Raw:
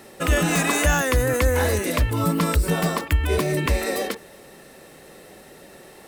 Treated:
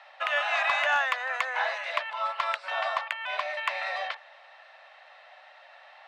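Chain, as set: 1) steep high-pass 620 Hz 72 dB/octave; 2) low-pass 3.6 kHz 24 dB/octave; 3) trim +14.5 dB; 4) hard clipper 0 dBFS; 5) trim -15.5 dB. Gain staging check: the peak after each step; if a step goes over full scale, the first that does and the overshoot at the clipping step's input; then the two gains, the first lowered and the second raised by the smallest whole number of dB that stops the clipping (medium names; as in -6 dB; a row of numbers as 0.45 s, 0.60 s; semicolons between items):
-9.5 dBFS, -11.0 dBFS, +3.5 dBFS, 0.0 dBFS, -15.5 dBFS; step 3, 3.5 dB; step 3 +10.5 dB, step 5 -11.5 dB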